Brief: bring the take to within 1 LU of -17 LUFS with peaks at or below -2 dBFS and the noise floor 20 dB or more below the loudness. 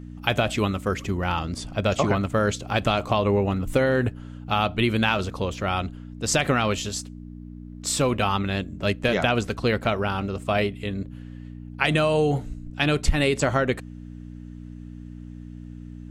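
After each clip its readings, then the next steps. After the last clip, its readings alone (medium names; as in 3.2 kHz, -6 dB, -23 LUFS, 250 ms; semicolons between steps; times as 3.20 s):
hum 60 Hz; highest harmonic 300 Hz; hum level -36 dBFS; loudness -24.5 LUFS; peak level -5.0 dBFS; loudness target -17.0 LUFS
-> de-hum 60 Hz, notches 5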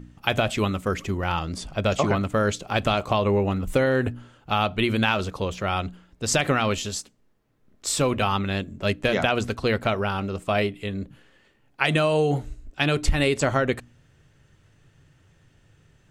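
hum not found; loudness -24.5 LUFS; peak level -4.5 dBFS; loudness target -17.0 LUFS
-> trim +7.5 dB; peak limiter -2 dBFS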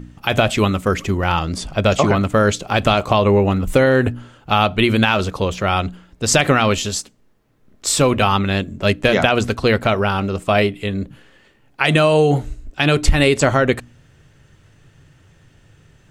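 loudness -17.0 LUFS; peak level -2.0 dBFS; noise floor -54 dBFS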